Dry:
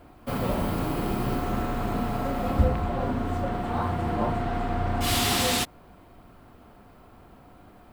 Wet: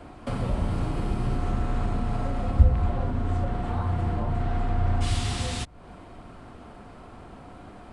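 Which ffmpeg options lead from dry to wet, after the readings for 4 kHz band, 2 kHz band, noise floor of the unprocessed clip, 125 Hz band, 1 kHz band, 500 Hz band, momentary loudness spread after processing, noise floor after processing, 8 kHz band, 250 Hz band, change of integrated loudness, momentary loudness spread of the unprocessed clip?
−8.5 dB, −6.5 dB, −52 dBFS, +4.0 dB, −5.0 dB, −5.0 dB, 21 LU, −46 dBFS, −9.0 dB, −3.5 dB, −0.5 dB, 6 LU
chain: -filter_complex "[0:a]acrossover=split=120[link_01][link_02];[link_02]acompressor=threshold=-37dB:ratio=12[link_03];[link_01][link_03]amix=inputs=2:normalize=0,aresample=22050,aresample=44100,volume=6.5dB"

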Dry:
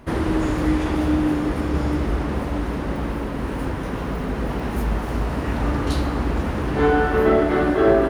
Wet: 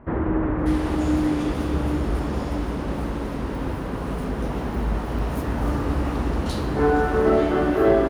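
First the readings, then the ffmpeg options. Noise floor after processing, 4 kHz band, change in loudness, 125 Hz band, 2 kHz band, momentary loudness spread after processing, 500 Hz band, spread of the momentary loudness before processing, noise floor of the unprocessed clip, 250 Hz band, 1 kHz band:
−29 dBFS, −3.0 dB, −1.5 dB, −1.5 dB, −4.0 dB, 9 LU, −1.5 dB, 9 LU, −27 dBFS, −1.5 dB, −2.0 dB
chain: -filter_complex "[0:a]acrossover=split=2000[link_01][link_02];[link_02]adelay=590[link_03];[link_01][link_03]amix=inputs=2:normalize=0,volume=-1.5dB"

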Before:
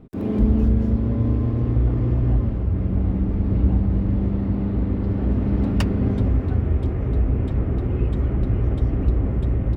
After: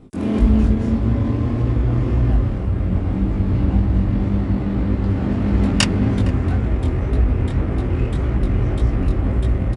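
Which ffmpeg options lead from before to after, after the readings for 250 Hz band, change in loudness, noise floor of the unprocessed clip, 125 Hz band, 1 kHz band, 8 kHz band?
+3.0 dB, +2.5 dB, −25 dBFS, +2.0 dB, +6.5 dB, can't be measured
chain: -filter_complex "[0:a]equalizer=frequency=430:width_type=o:width=0.23:gain=-3,flanger=delay=18.5:depth=5.9:speed=1.8,asplit=2[link_01][link_02];[link_02]adelay=460.6,volume=-16dB,highshelf=frequency=4000:gain=-10.4[link_03];[link_01][link_03]amix=inputs=2:normalize=0,crystalizer=i=10:c=0,asplit=2[link_04][link_05];[link_05]adynamicsmooth=sensitivity=6.5:basefreq=1200,volume=2dB[link_06];[link_04][link_06]amix=inputs=2:normalize=0,aresample=22050,aresample=44100,volume=-2dB"

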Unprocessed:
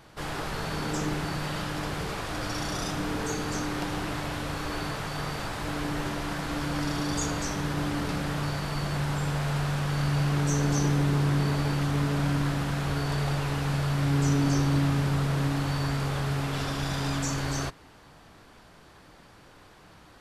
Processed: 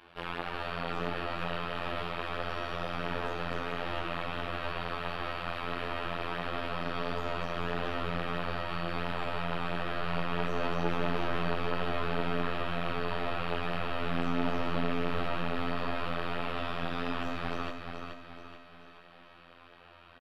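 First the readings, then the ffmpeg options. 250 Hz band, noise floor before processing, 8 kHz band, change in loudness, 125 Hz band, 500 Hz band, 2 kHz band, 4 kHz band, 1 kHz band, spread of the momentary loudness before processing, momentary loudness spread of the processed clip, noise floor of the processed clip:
−8.0 dB, −53 dBFS, below −20 dB, −6.0 dB, −13.5 dB, 0.0 dB, −2.0 dB, −4.5 dB, −0.5 dB, 8 LU, 4 LU, −55 dBFS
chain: -filter_complex "[0:a]bandreject=frequency=2000:width=9.1,aeval=exprs='0.211*(cos(1*acos(clip(val(0)/0.211,-1,1)))-cos(1*PI/2))+0.0335*(cos(6*acos(clip(val(0)/0.211,-1,1)))-cos(6*PI/2))':channel_layout=same,acrossover=split=540|1300[link_01][link_02][link_03];[link_03]alimiter=level_in=7.5dB:limit=-24dB:level=0:latency=1,volume=-7.5dB[link_04];[link_01][link_02][link_04]amix=inputs=3:normalize=0,afftfilt=real='hypot(re,im)*cos(PI*b)':imag='0':win_size=2048:overlap=0.75,flanger=delay=8.4:depth=4.1:regen=-19:speed=1.5:shape=sinusoidal,firequalizer=gain_entry='entry(110,0);entry(290,6);entry(2800,13);entry(6500,-14);entry(11000,-7)':delay=0.05:min_phase=1,asplit=2[link_05][link_06];[link_06]aecho=0:1:428|856|1284|1712|2140:0.501|0.221|0.097|0.0427|0.0188[link_07];[link_05][link_07]amix=inputs=2:normalize=0,volume=-3.5dB"

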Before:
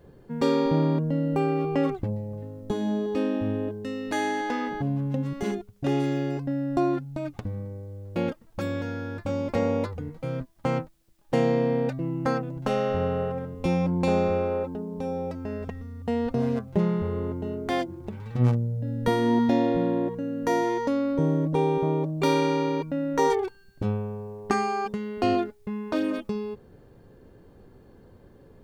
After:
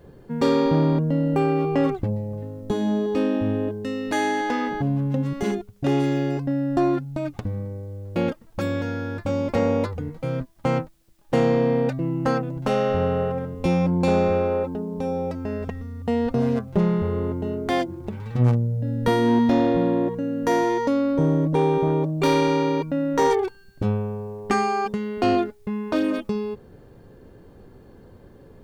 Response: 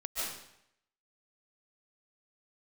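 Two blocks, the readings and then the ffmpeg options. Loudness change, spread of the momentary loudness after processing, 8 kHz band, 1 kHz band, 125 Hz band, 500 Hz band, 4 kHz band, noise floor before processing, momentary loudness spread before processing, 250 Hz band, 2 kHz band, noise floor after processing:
+3.5 dB, 10 LU, can't be measured, +3.5 dB, +4.0 dB, +3.5 dB, +3.5 dB, −54 dBFS, 10 LU, +4.0 dB, +3.5 dB, −49 dBFS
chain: -af "aeval=exprs='0.422*sin(PI/2*1.78*val(0)/0.422)':channel_layout=same,volume=-4.5dB"

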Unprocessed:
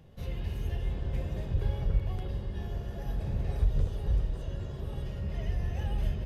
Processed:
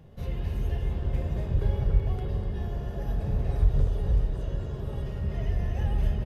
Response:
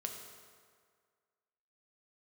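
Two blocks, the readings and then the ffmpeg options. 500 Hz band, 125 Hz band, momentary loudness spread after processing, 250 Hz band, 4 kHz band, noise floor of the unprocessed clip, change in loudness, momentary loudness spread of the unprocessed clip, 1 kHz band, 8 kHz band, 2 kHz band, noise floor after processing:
+4.5 dB, +4.0 dB, 7 LU, +4.0 dB, 0.0 dB, −39 dBFS, +4.0 dB, 7 LU, +4.0 dB, can't be measured, +2.0 dB, −35 dBFS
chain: -filter_complex "[0:a]aecho=1:1:246:0.316,asplit=2[link_01][link_02];[1:a]atrim=start_sample=2205,lowpass=2200[link_03];[link_02][link_03]afir=irnorm=-1:irlink=0,volume=-3dB[link_04];[link_01][link_04]amix=inputs=2:normalize=0"

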